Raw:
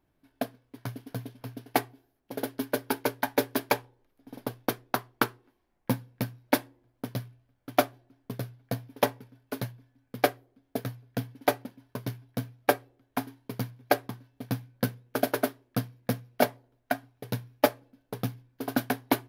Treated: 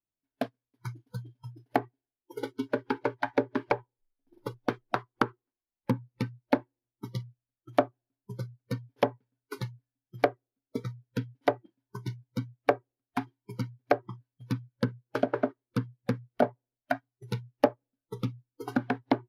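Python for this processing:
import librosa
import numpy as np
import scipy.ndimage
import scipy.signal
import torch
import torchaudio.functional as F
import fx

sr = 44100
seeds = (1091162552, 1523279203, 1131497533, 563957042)

y = fx.noise_reduce_blind(x, sr, reduce_db=26)
y = fx.env_lowpass_down(y, sr, base_hz=920.0, full_db=-22.5)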